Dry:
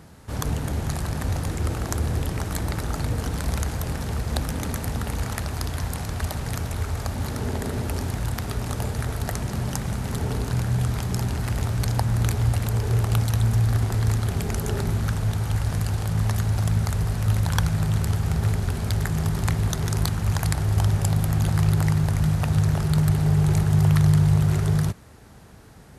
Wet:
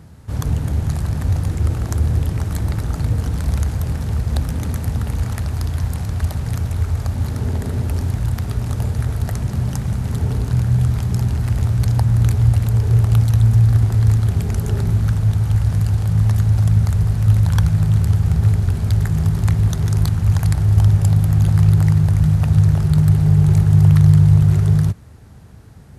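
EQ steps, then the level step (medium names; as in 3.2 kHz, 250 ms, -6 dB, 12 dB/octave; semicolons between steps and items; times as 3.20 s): peaking EQ 91 Hz +11 dB 2.3 oct; -2.0 dB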